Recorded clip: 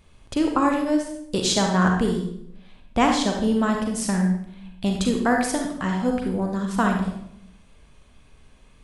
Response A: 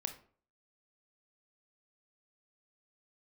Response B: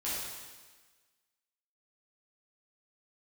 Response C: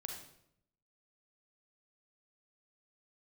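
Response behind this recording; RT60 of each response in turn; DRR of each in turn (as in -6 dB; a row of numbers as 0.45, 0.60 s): C; 0.50, 1.4, 0.75 s; 7.0, -10.0, 1.5 dB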